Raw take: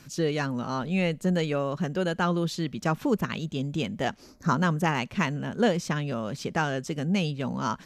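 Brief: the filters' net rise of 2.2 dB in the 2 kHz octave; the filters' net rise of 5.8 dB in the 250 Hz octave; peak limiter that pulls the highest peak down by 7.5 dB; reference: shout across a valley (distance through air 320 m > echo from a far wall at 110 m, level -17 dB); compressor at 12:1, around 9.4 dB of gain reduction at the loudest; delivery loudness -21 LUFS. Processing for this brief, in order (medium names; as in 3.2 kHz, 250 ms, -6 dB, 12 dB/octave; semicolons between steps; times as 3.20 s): peaking EQ 250 Hz +8.5 dB; peaking EQ 2 kHz +6.5 dB; compression 12:1, threshold -23 dBFS; peak limiter -21 dBFS; distance through air 320 m; echo from a far wall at 110 m, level -17 dB; trim +10.5 dB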